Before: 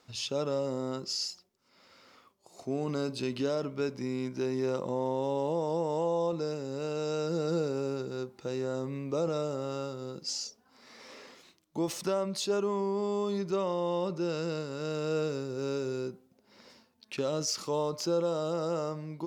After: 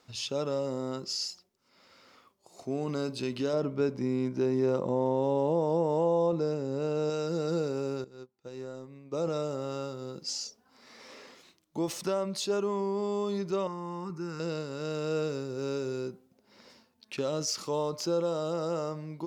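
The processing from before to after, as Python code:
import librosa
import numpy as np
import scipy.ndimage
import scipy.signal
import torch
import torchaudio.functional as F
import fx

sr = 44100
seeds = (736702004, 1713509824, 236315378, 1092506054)

y = fx.tilt_shelf(x, sr, db=4.5, hz=1400.0, at=(3.53, 7.1))
y = fx.upward_expand(y, sr, threshold_db=-45.0, expansion=2.5, at=(8.04, 9.24))
y = fx.fixed_phaser(y, sr, hz=1400.0, stages=4, at=(13.67, 14.4))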